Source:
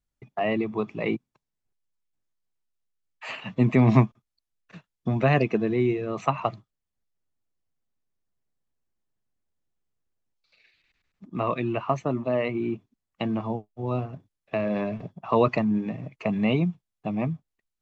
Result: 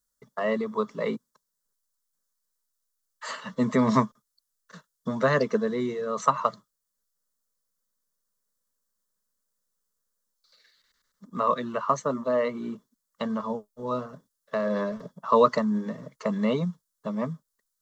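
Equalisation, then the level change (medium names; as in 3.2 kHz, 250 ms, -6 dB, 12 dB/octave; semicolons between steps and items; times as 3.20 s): tone controls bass -3 dB, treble +7 dB; bass shelf 400 Hz -8.5 dB; static phaser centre 500 Hz, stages 8; +7.0 dB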